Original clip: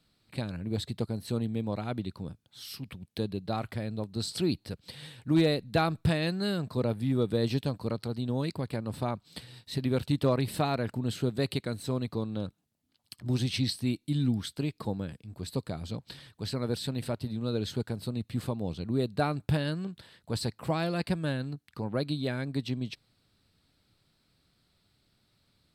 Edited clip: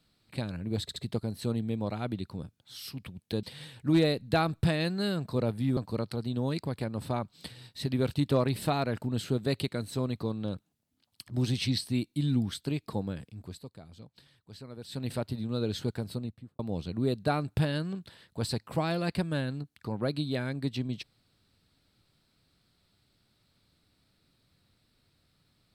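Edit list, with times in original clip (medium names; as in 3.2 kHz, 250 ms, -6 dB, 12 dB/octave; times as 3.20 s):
0.82 s: stutter 0.07 s, 3 plays
3.29–4.85 s: delete
7.19–7.69 s: delete
15.31–16.99 s: dip -13 dB, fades 0.23 s
17.98–18.51 s: studio fade out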